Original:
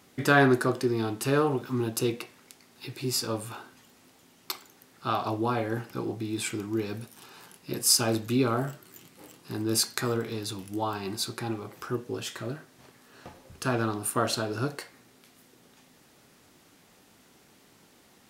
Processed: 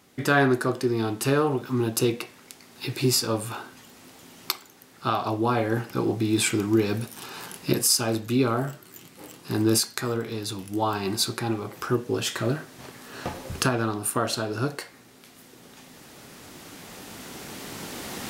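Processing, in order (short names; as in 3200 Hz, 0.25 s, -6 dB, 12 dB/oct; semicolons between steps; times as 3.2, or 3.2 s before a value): recorder AGC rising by 5.8 dB/s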